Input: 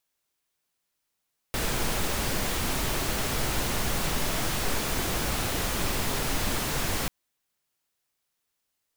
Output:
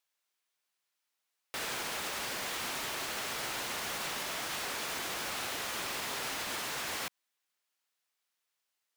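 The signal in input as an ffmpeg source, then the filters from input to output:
-f lavfi -i "anoisesrc=color=pink:amplitude=0.216:duration=5.54:sample_rate=44100:seed=1"
-af "highpass=frequency=1000:poles=1,highshelf=frequency=6100:gain=-7,alimiter=level_in=4.5dB:limit=-24dB:level=0:latency=1,volume=-4.5dB"

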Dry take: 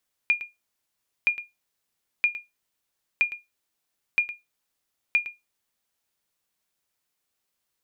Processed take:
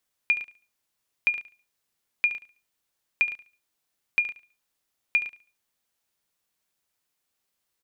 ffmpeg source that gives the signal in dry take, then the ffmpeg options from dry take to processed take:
-f lavfi -i "aevalsrc='0.237*(sin(2*PI*2420*mod(t,0.97))*exp(-6.91*mod(t,0.97)/0.19)+0.188*sin(2*PI*2420*max(mod(t,0.97)-0.11,0))*exp(-6.91*max(mod(t,0.97)-0.11,0)/0.19))':duration=5.82:sample_rate=44100"
-af "aecho=1:1:71|142|213:0.2|0.0579|0.0168"

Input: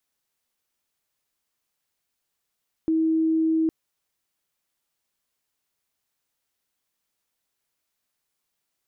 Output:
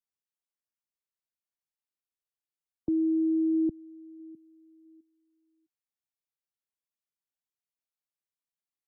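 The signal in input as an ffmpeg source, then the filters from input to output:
-f lavfi -i "sine=frequency=321:duration=0.81:sample_rate=44100,volume=-0.44dB"
-filter_complex "[0:a]acrossover=split=110|310[link_01][link_02][link_03];[link_02]aecho=1:1:657|1314|1971:0.112|0.0348|0.0108[link_04];[link_03]alimiter=level_in=10dB:limit=-24dB:level=0:latency=1,volume=-10dB[link_05];[link_01][link_04][link_05]amix=inputs=3:normalize=0,afftdn=noise_reduction=20:noise_floor=-49"

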